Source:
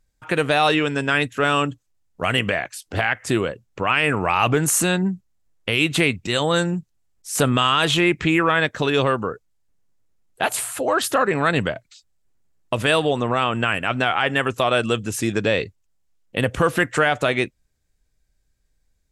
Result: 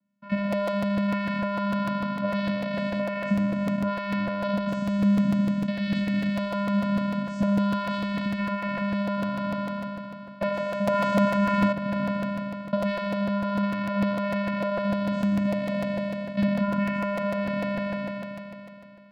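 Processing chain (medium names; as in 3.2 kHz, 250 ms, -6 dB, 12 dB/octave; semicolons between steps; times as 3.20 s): spectral sustain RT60 2.87 s; 10.87–11.72 s: waveshaping leveller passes 5; compression 6:1, threshold -20 dBFS, peak gain reduction 15.5 dB; distance through air 200 m; de-hum 162.6 Hz, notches 28; vocoder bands 8, square 201 Hz; crackling interface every 0.15 s, samples 256, repeat, from 0.52 s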